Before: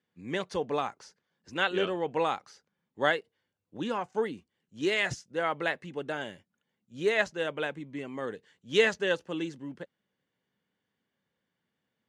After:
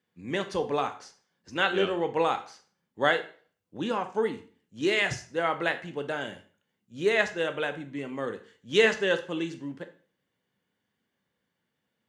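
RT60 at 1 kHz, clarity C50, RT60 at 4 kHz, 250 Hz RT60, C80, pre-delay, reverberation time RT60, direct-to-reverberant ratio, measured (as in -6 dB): 0.45 s, 13.0 dB, 0.40 s, 0.45 s, 17.5 dB, 7 ms, 0.45 s, 8.0 dB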